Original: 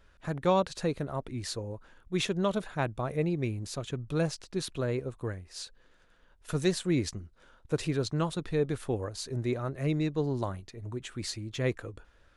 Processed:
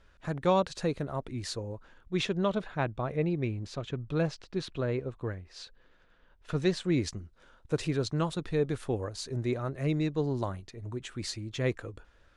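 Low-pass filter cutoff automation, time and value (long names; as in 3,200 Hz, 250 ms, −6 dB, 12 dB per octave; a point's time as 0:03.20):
0:01.55 8,800 Hz
0:02.58 4,200 Hz
0:06.65 4,200 Hz
0:07.13 9,200 Hz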